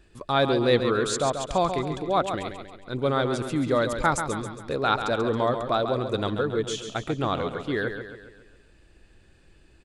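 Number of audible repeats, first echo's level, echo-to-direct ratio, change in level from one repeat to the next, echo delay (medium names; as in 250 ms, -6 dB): 5, -8.0 dB, -7.0 dB, -6.0 dB, 137 ms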